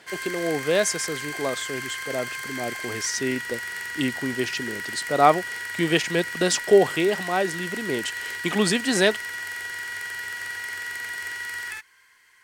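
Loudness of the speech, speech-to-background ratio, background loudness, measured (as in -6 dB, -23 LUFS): -25.0 LUFS, 6.0 dB, -31.0 LUFS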